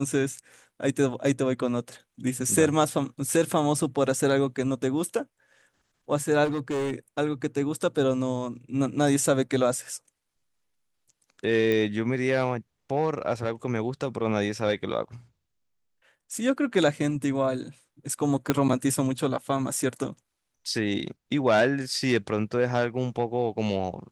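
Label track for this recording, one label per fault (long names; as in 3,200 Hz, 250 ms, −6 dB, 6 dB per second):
6.440000	6.930000	clipping −24.5 dBFS
11.720000	11.720000	click
18.500000	18.500000	click −7 dBFS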